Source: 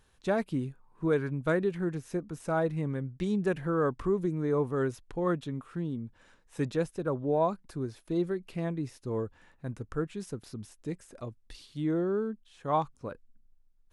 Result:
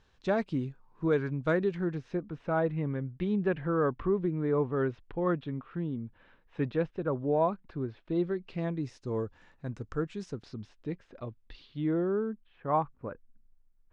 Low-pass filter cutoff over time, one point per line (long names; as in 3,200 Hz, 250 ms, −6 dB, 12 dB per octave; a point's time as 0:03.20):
low-pass filter 24 dB per octave
0:01.73 5,900 Hz
0:02.36 3,300 Hz
0:07.99 3,300 Hz
0:08.93 6,700 Hz
0:10.17 6,700 Hz
0:10.89 3,800 Hz
0:11.66 3,800 Hz
0:12.81 2,200 Hz